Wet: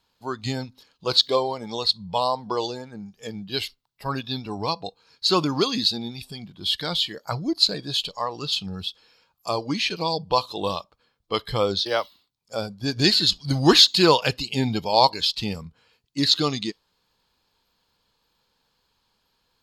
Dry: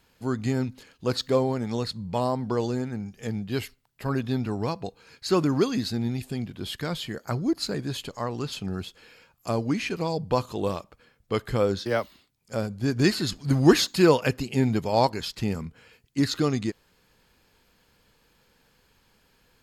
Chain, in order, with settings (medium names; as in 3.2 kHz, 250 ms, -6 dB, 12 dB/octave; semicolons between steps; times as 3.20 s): dynamic bell 3.4 kHz, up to +6 dB, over -46 dBFS, Q 1.1; spectral noise reduction 10 dB; graphic EQ 1/2/4 kHz +8/-4/+11 dB; trim -1 dB